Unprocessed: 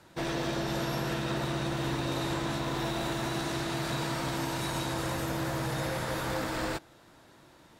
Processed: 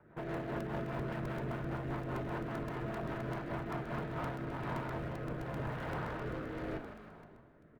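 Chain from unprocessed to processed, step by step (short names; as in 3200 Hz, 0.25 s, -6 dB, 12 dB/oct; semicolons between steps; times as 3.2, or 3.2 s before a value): LPF 1800 Hz 24 dB/oct; de-hum 90.59 Hz, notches 6; in parallel at -7 dB: bit-crush 5-bit; on the sum: tube stage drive 34 dB, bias 0.4; frequency-shifting echo 0.157 s, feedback 61%, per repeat -51 Hz, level -11 dB; on a send at -7 dB: reverb RT60 0.30 s, pre-delay 4 ms; on the sum: rotary speaker horn 5 Hz, later 0.85 Hz, at 3.78; crackling interface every 0.13 s, samples 128, repeat, from 0.34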